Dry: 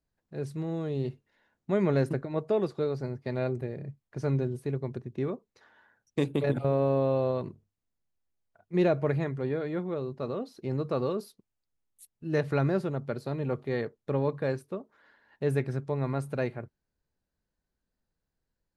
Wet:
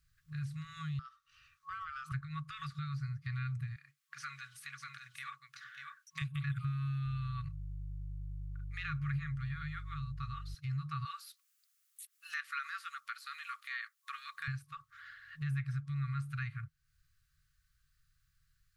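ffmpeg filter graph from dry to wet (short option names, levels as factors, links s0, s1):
-filter_complex "[0:a]asettb=1/sr,asplit=3[s0][s1][s2];[s0]atrim=end=0.994[s3];[s1]atrim=start=0.99:end=2.12,asetpts=PTS-STARTPTS,afade=t=in:d=0.004:c=qsin,afade=t=out:st=1.126:d=0.004:c=qsin,equalizer=f=5000:w=4.4:g=8,aeval=exprs='val(0)*sin(2*PI*930*n/s)':c=same,acompressor=threshold=0.00631:ratio=3:attack=3.2:release=140:knee=1:detection=peak[s4];[s2]atrim=start=2.116[s5];[s3][s4]acrossfade=d=0.004:c1=hsin:c2=qsin[s6];[s6][s5]acrossfade=d=0.004:c1=qsin:c2=hsin,asettb=1/sr,asplit=3[s7][s8][s9];[s7]atrim=end=3.764[s10];[s8]atrim=start=3.76:end=6.22,asetpts=PTS-STARTPTS,afade=t=in:d=0.004:c=qsin,afade=t=out:st=2.456:d=0.004:c=qsin,highpass=1000,aecho=1:1:593:0.376,atrim=end_sample=108486[s11];[s9]atrim=start=6.216[s12];[s10][s11]acrossfade=d=0.004:c1=hsin:c2=qsin[s13];[s13][s12]acrossfade=d=0.004:c1=qsin:c2=hsin,asettb=1/sr,asplit=3[s14][s15][s16];[s14]atrim=end=7.064[s17];[s15]atrim=start=7.06:end=10.55,asetpts=PTS-STARTPTS,afade=t=in:d=0.004:c=qsin,afade=t=out:st=3.486:d=0.004:c=qsin,aeval=exprs='val(0)+0.00631*(sin(2*PI*50*n/s)+sin(2*PI*2*50*n/s)/2+sin(2*PI*3*50*n/s)/3+sin(2*PI*4*50*n/s)/4+sin(2*PI*5*50*n/s)/5)':c=same,acompressor=mode=upward:threshold=0.0112:ratio=2.5:attack=3.2:release=140:knee=2.83:detection=peak[s18];[s16]atrim=start=10.546[s19];[s17][s18]acrossfade=d=0.004:c1=hsin:c2=qsin[s20];[s20][s19]acrossfade=d=0.004:c1=qsin:c2=hsin,asettb=1/sr,asplit=3[s21][s22][s23];[s21]atrim=end=11.054[s24];[s22]atrim=start=11.05:end=14.48,asetpts=PTS-STARTPTS,afade=t=in:d=0.004:c=qsin,afade=t=out:st=3.426:d=0.004:c=qsin,highpass=f=920:w=0.5412,highpass=f=920:w=1.3066,highshelf=f=5400:g=11[s25];[s23]atrim=start=14.476[s26];[s24][s25]acrossfade=d=0.004:c1=hsin:c2=qsin[s27];[s27][s26]acrossfade=d=0.004:c1=qsin:c2=hsin,acrossover=split=3300[s28][s29];[s29]acompressor=threshold=0.00126:ratio=4:attack=1:release=60[s30];[s28][s30]amix=inputs=2:normalize=0,afftfilt=real='re*(1-between(b*sr/4096,160,1100))':imag='im*(1-between(b*sr/4096,160,1100))':win_size=4096:overlap=0.75,acompressor=threshold=0.00126:ratio=2,volume=3.55"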